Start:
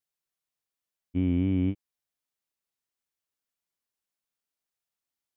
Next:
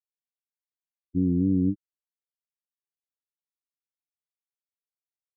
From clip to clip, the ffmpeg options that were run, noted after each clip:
ffmpeg -i in.wav -af "afftfilt=real='re*gte(hypot(re,im),0.0355)':imag='im*gte(hypot(re,im),0.0355)':win_size=1024:overlap=0.75,aecho=1:1:6.2:0.52,volume=2.5dB" out.wav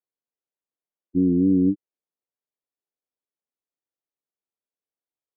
ffmpeg -i in.wav -af "bandpass=frequency=410:width_type=q:width=0.99:csg=0,volume=8dB" out.wav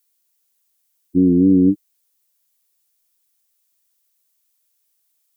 ffmpeg -i in.wav -af "crystalizer=i=10:c=0,volume=5dB" out.wav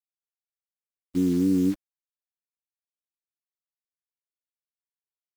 ffmpeg -i in.wav -af "acrusher=bits=6:dc=4:mix=0:aa=0.000001,volume=-9dB" out.wav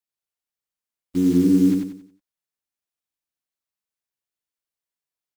ffmpeg -i in.wav -af "aecho=1:1:91|182|273|364|455:0.631|0.227|0.0818|0.0294|0.0106,volume=3dB" out.wav

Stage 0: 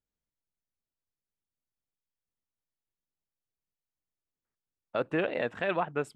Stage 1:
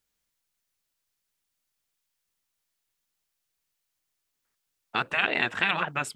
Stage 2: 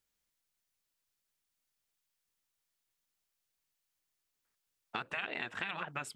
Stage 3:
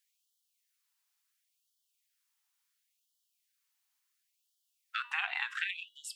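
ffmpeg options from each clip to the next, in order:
ffmpeg -i in.wav -af "afftfilt=real='re*lt(hypot(re,im),0.112)':imag='im*lt(hypot(re,im),0.112)':win_size=1024:overlap=0.75,tiltshelf=frequency=850:gain=-6,volume=9dB" out.wav
ffmpeg -i in.wav -af "acompressor=threshold=-31dB:ratio=6,volume=-4dB" out.wav
ffmpeg -i in.wav -af "flanger=delay=3.7:depth=6.3:regen=84:speed=0.59:shape=triangular,bandreject=frequency=240.6:width_type=h:width=4,bandreject=frequency=481.2:width_type=h:width=4,bandreject=frequency=721.8:width_type=h:width=4,bandreject=frequency=962.4:width_type=h:width=4,bandreject=frequency=1203:width_type=h:width=4,bandreject=frequency=1443.6:width_type=h:width=4,bandreject=frequency=1684.2:width_type=h:width=4,bandreject=frequency=1924.8:width_type=h:width=4,bandreject=frequency=2165.4:width_type=h:width=4,bandreject=frequency=2406:width_type=h:width=4,bandreject=frequency=2646.6:width_type=h:width=4,bandreject=frequency=2887.2:width_type=h:width=4,bandreject=frequency=3127.8:width_type=h:width=4,bandreject=frequency=3368.4:width_type=h:width=4,bandreject=frequency=3609:width_type=h:width=4,bandreject=frequency=3849.6:width_type=h:width=4,bandreject=frequency=4090.2:width_type=h:width=4,bandreject=frequency=4330.8:width_type=h:width=4,bandreject=frequency=4571.4:width_type=h:width=4,bandreject=frequency=4812:width_type=h:width=4,bandreject=frequency=5052.6:width_type=h:width=4,bandreject=frequency=5293.2:width_type=h:width=4,bandreject=frequency=5533.8:width_type=h:width=4,bandreject=frequency=5774.4:width_type=h:width=4,bandreject=frequency=6015:width_type=h:width=4,bandreject=frequency=6255.6:width_type=h:width=4,bandreject=frequency=6496.2:width_type=h:width=4,bandreject=frequency=6736.8:width_type=h:width=4,bandreject=frequency=6977.4:width_type=h:width=4,bandreject=frequency=7218:width_type=h:width=4,bandreject=frequency=7458.6:width_type=h:width=4,bandreject=frequency=7699.2:width_type=h:width=4,bandreject=frequency=7939.8:width_type=h:width=4,bandreject=frequency=8180.4:width_type=h:width=4,bandreject=frequency=8421:width_type=h:width=4,bandreject=frequency=8661.6:width_type=h:width=4,afftfilt=real='re*gte(b*sr/1024,680*pow(2900/680,0.5+0.5*sin(2*PI*0.71*pts/sr)))':imag='im*gte(b*sr/1024,680*pow(2900/680,0.5+0.5*sin(2*PI*0.71*pts/sr)))':win_size=1024:overlap=0.75,volume=9dB" out.wav

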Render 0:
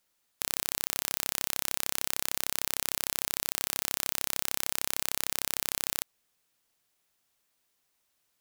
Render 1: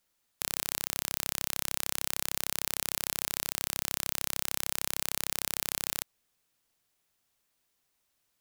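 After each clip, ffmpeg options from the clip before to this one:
ffmpeg -i in.wav -af "lowshelf=frequency=190:gain=4.5,volume=-1.5dB" out.wav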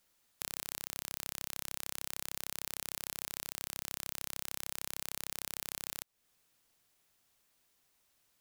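ffmpeg -i in.wav -af "acompressor=threshold=-41dB:ratio=2.5,volume=3dB" out.wav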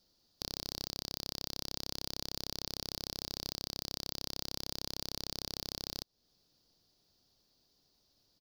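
ffmpeg -i in.wav -af "firequalizer=gain_entry='entry(300,0);entry(1100,-12);entry(2200,-18);entry(4700,4);entry(7800,-21);entry(15000,-14)':delay=0.05:min_phase=1,volume=8dB" out.wav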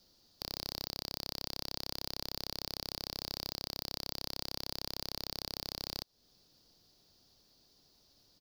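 ffmpeg -i in.wav -filter_complex "[0:a]acrossover=split=480|5000[link_01][link_02][link_03];[link_01]alimiter=level_in=18.5dB:limit=-24dB:level=0:latency=1:release=172,volume=-18.5dB[link_04];[link_04][link_02][link_03]amix=inputs=3:normalize=0,asoftclip=type=tanh:threshold=-31dB,volume=6dB" out.wav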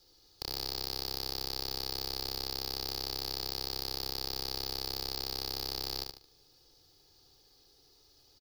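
ffmpeg -i in.wav -filter_complex "[0:a]aecho=1:1:2.4:0.85,asplit=2[link_01][link_02];[link_02]aecho=0:1:74|148|222|296:0.596|0.197|0.0649|0.0214[link_03];[link_01][link_03]amix=inputs=2:normalize=0" out.wav

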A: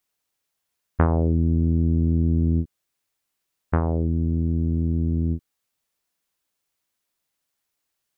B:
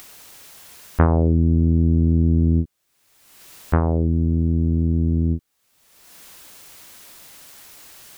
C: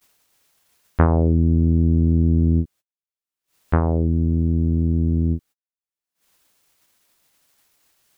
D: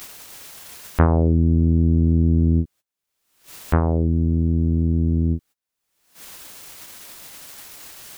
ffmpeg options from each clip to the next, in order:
ffmpeg -i in.wav -af "acompressor=mode=upward:threshold=-23dB:ratio=2.5,volume=3.5dB" out.wav
ffmpeg -i in.wav -af "agate=range=-41dB:threshold=-41dB:ratio=16:detection=peak" out.wav
ffmpeg -i in.wav -af "acompressor=mode=upward:threshold=-21dB:ratio=2.5" out.wav

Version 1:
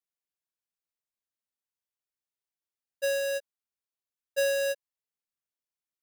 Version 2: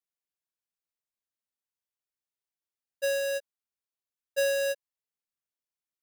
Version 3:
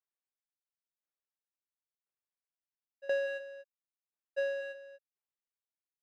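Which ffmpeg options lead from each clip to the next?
ffmpeg -i in.wav -af anull out.wav
ffmpeg -i in.wav -af "highpass=310,lowpass=2100,aecho=1:1:239:0.376,aeval=exprs='val(0)*pow(10,-19*if(lt(mod(0.97*n/s,1),2*abs(0.97)/1000),1-mod(0.97*n/s,1)/(2*abs(0.97)/1000),(mod(0.97*n/s,1)-2*abs(0.97)/1000)/(1-2*abs(0.97)/1000))/20)':channel_layout=same" out.wav

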